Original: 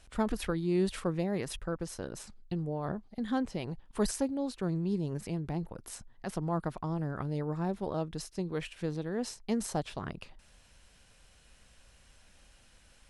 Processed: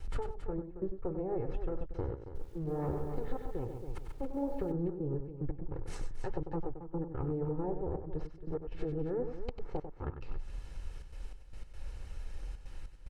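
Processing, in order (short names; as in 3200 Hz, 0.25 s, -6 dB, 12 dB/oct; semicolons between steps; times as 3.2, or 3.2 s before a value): minimum comb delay 2.3 ms; notch 3400 Hz, Q 20; treble ducked by the level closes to 1000 Hz, closed at -31 dBFS; tilt -3 dB/oct; notches 50/100 Hz; compressor 12:1, threshold -39 dBFS, peak gain reduction 24.5 dB; flange 1.7 Hz, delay 2.4 ms, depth 9.2 ms, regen -61%; step gate "xxx.xx..x.xxxxx" 147 bpm -24 dB; loudspeakers at several distances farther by 33 m -9 dB, 94 m -11 dB; 2.21–4.72 lo-fi delay 0.137 s, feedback 35%, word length 12-bit, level -7 dB; gain +11.5 dB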